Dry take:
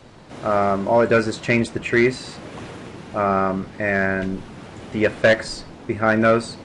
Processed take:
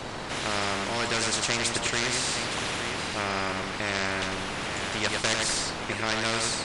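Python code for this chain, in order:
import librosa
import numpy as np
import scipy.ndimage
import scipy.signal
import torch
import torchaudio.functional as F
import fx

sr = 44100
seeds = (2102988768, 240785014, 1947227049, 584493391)

y = fx.echo_multitap(x, sr, ms=(97, 865), db=(-8.5, -19.5))
y = fx.spectral_comp(y, sr, ratio=4.0)
y = y * librosa.db_to_amplitude(-6.0)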